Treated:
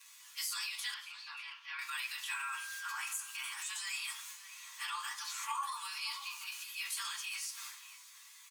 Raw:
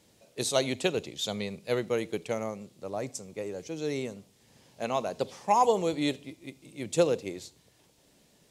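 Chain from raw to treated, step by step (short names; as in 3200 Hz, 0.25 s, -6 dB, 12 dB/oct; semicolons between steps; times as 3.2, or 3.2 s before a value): inharmonic rescaling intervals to 108%; steep high-pass 980 Hz 96 dB/oct; transient shaper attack -3 dB, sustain +10 dB; compressor 6:1, threshold -53 dBFS, peak gain reduction 25 dB; 0.94–1.79 air absorption 320 m; 2.31–2.97 whine 1600 Hz -59 dBFS; outdoor echo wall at 100 m, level -11 dB; reverb RT60 0.45 s, pre-delay 3 ms, DRR 0 dB; mismatched tape noise reduction decoder only; gain +14 dB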